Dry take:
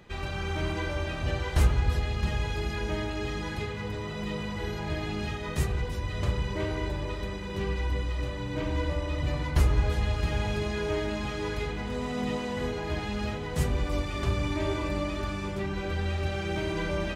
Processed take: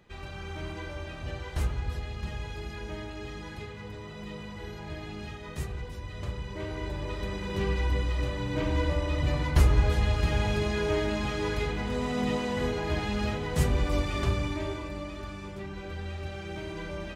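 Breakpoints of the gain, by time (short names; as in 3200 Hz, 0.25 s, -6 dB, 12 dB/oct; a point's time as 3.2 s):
6.45 s -7 dB
7.43 s +2 dB
14.18 s +2 dB
14.89 s -7 dB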